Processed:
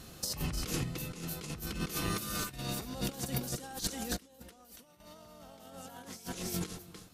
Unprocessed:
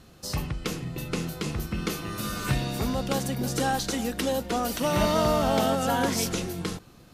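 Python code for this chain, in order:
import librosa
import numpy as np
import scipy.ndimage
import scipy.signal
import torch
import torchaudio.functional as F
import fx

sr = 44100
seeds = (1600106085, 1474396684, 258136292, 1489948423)

p1 = fx.high_shelf(x, sr, hz=4800.0, db=9.5)
p2 = p1 + fx.echo_single(p1, sr, ms=296, db=-11.5, dry=0)
p3 = fx.over_compress(p2, sr, threshold_db=-32.0, ratio=-0.5)
p4 = fx.tremolo_random(p3, sr, seeds[0], hz=1.2, depth_pct=85)
y = F.gain(torch.from_numpy(p4), -3.0).numpy()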